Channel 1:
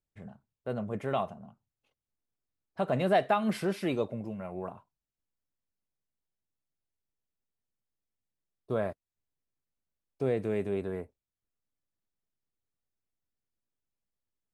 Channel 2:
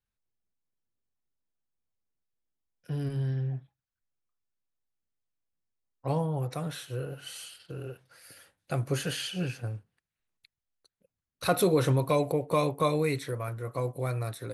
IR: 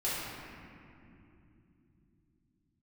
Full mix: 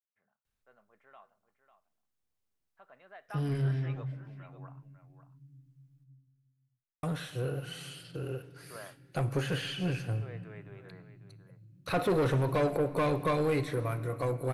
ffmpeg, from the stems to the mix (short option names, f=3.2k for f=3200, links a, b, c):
-filter_complex "[0:a]bandpass=f=1.5k:t=q:w=1.7:csg=0,volume=-5.5dB,afade=t=in:st=3.22:d=0.42:silence=0.251189,asplit=2[a][b];[b]volume=-11.5dB[c];[1:a]asoftclip=type=tanh:threshold=-26dB,adelay=450,volume=2dB,asplit=3[d][e][f];[d]atrim=end=6.04,asetpts=PTS-STARTPTS,afade=t=out:st=6.036:d=0.004:c=hsin[g];[e]atrim=start=6.04:end=7.03,asetpts=PTS-STARTPTS,volume=0[h];[f]atrim=start=7.03,asetpts=PTS-STARTPTS,afade=t=in:d=0.004:c=hsin[i];[g][h][i]concat=n=3:v=0:a=1,asplit=2[j][k];[k]volume=-20dB[l];[2:a]atrim=start_sample=2205[m];[l][m]afir=irnorm=-1:irlink=0[n];[c]aecho=0:1:547:1[o];[a][j][n][o]amix=inputs=4:normalize=0,acrossover=split=3100[p][q];[q]acompressor=threshold=-49dB:ratio=4:attack=1:release=60[r];[p][r]amix=inputs=2:normalize=0"